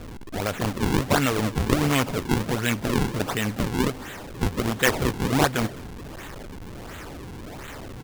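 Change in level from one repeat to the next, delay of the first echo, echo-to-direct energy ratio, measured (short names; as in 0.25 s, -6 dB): -12.5 dB, 0.212 s, -22.0 dB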